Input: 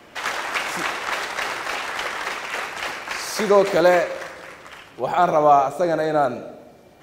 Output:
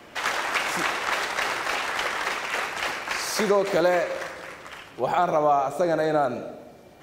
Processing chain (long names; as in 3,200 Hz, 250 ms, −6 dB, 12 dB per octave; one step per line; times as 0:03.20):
downward compressor 3 to 1, threshold −19 dBFS, peak gain reduction 7.5 dB